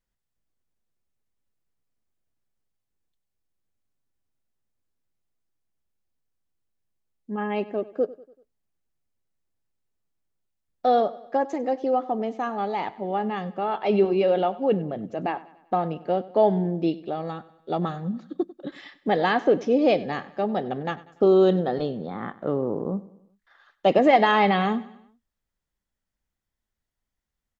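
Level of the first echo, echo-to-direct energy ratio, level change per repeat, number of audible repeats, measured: -19.0 dB, -18.0 dB, -6.0 dB, 3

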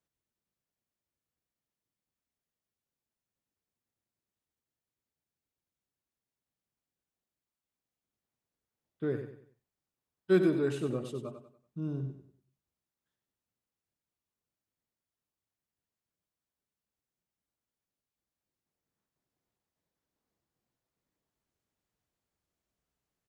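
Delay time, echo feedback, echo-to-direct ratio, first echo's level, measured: 95 ms, 36%, -8.5 dB, -9.0 dB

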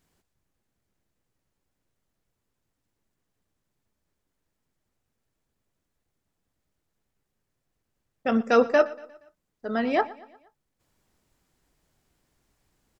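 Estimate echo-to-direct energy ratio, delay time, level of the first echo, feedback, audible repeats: -19.0 dB, 118 ms, -20.0 dB, 50%, 3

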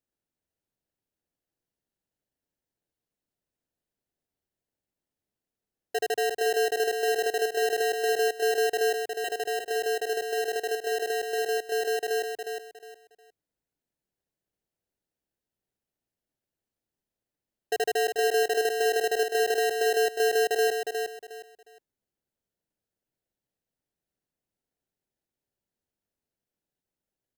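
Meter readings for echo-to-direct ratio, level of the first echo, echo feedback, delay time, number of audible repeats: -5.0 dB, -5.5 dB, 26%, 360 ms, 3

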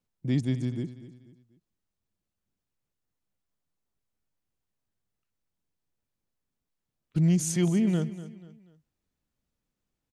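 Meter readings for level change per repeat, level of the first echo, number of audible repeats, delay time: -8.5 dB, -15.0 dB, 3, 243 ms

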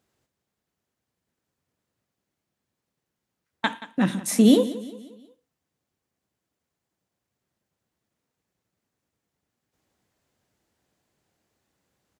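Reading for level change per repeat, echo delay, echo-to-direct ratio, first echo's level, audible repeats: -6.5 dB, 178 ms, -15.0 dB, -16.0 dB, 3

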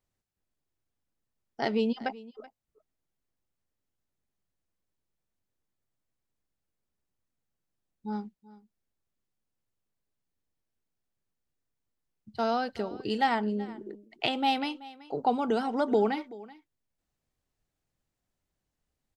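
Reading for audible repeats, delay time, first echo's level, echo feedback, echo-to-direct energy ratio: 1, 380 ms, -19.5 dB, no regular repeats, -19.5 dB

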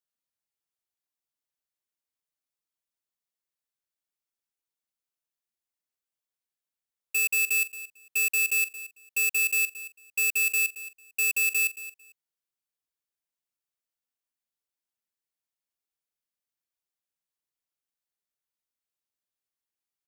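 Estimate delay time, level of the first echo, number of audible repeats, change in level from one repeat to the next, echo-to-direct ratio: 224 ms, -15.0 dB, 2, -15.0 dB, -15.0 dB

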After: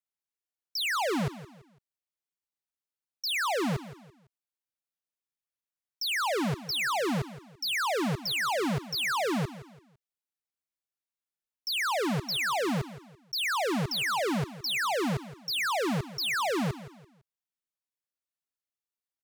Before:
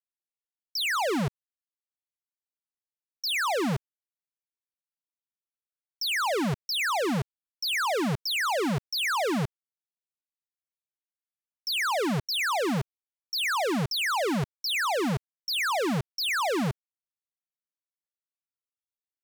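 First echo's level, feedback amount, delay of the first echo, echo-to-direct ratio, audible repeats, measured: -15.5 dB, 35%, 168 ms, -15.0 dB, 3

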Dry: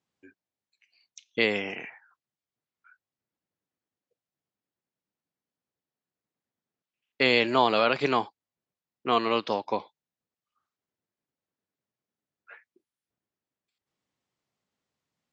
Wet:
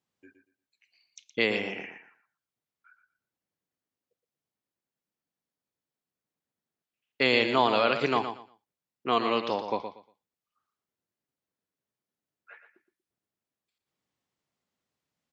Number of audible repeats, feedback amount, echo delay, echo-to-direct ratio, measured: 2, 21%, 118 ms, -9.0 dB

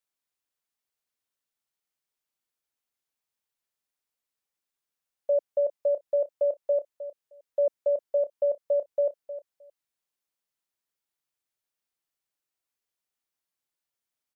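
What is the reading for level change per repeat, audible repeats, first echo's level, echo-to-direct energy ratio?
-16.5 dB, 2, -13.0 dB, -13.0 dB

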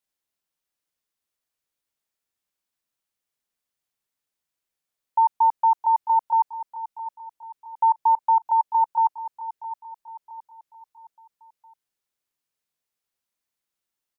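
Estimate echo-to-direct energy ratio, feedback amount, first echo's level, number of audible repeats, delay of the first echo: -11.5 dB, 43%, -12.5 dB, 4, 666 ms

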